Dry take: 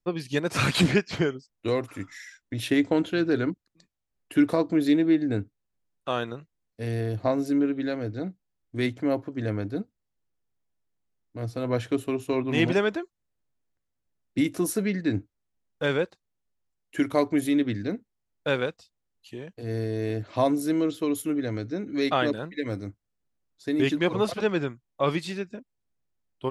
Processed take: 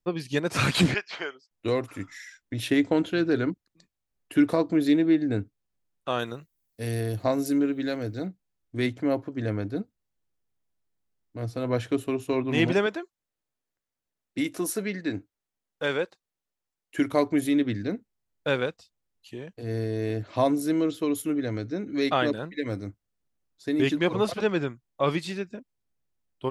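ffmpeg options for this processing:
-filter_complex "[0:a]asettb=1/sr,asplit=3[a][b][c];[a]atrim=end=0.944[d];[b]atrim=start=0.94:end=1.51,asetpts=PTS-STARTPTS,afade=t=in:d=0.004:c=qsin,afade=t=out:st=0.566:d=0.004:c=qsin,highpass=760,lowpass=4.4k[e];[c]atrim=start=1.506[f];[d][e]acrossfade=d=0.004:c1=hsin:c2=qsin[g];[g][f]acrossfade=d=0.004:c1=qsin:c2=hsin,asettb=1/sr,asplit=3[h][i][j];[h]atrim=end=6.194[k];[i]atrim=start=6.19:end=8.27,asetpts=PTS-STARTPTS,afade=t=in:d=0.004:c=qsin,afade=t=out:st=2.076:d=0.004:c=qsin,aemphasis=mode=production:type=50fm[l];[j]atrim=start=8.266[m];[k][l]acrossfade=d=0.004:c1=hsin:c2=qsin[n];[n][m]acrossfade=d=0.004:c1=qsin:c2=hsin,asettb=1/sr,asplit=3[o][p][q];[o]atrim=end=12.864[r];[p]atrim=start=12.86:end=16.99,asetpts=PTS-STARTPTS,afade=t=in:d=0.004:c=qsin,afade=t=out:st=4.126:d=0.004:c=qsin,lowshelf=f=210:g=-11.5[s];[q]atrim=start=16.986[t];[r][s]acrossfade=d=0.004:c1=hsin:c2=qsin[u];[u][t]acrossfade=d=0.004:c1=qsin:c2=hsin"

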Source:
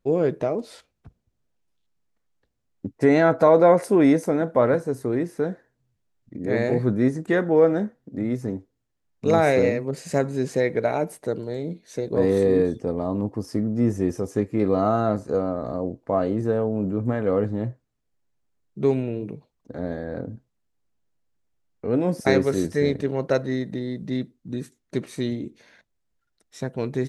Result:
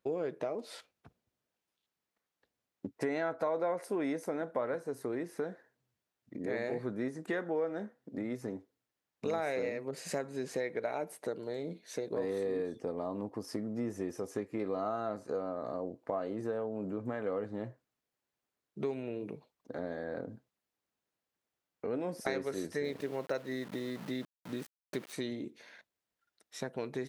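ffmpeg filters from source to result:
-filter_complex "[0:a]asettb=1/sr,asplit=3[a][b][c];[a]atrim=end=22.844[d];[b]atrim=start=22.84:end=25.13,asetpts=PTS-STARTPTS,afade=t=in:d=0.004:c=qsin,afade=t=out:st=2.286:d=0.004:c=qsin,aeval=exprs='val(0)*gte(abs(val(0)),0.01)':c=same[e];[c]atrim=start=25.126[f];[d][e]acrossfade=d=0.004:c1=hsin:c2=qsin[g];[g][f]acrossfade=d=0.004:c1=qsin:c2=hsin,highpass=f=500:p=1,equalizer=f=7.2k:t=o:w=0.91:g=-3.5,acompressor=threshold=-35dB:ratio=3"

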